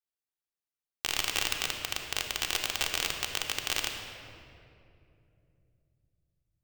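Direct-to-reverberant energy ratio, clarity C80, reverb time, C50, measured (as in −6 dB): 2.0 dB, 5.5 dB, 2.7 s, 4.5 dB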